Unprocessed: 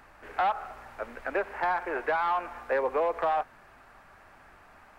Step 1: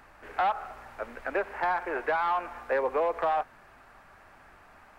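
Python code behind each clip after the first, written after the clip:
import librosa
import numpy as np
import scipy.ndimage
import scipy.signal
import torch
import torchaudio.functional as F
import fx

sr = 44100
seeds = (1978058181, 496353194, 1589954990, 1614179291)

y = x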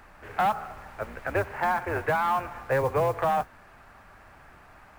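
y = fx.octave_divider(x, sr, octaves=2, level_db=2.0)
y = fx.mod_noise(y, sr, seeds[0], snr_db=27)
y = F.gain(torch.from_numpy(y), 2.0).numpy()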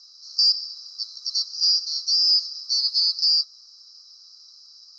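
y = fx.band_swap(x, sr, width_hz=4000)
y = fx.double_bandpass(y, sr, hz=2500.0, octaves=2.0)
y = F.gain(torch.from_numpy(y), 8.0).numpy()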